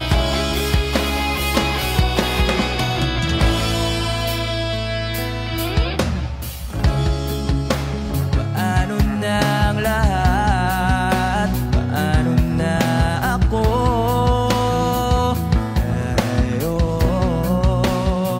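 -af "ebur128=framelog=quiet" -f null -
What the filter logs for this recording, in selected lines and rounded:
Integrated loudness:
  I:         -19.2 LUFS
  Threshold: -29.2 LUFS
Loudness range:
  LRA:         3.7 LU
  Threshold: -39.2 LUFS
  LRA low:   -21.7 LUFS
  LRA high:  -18.1 LUFS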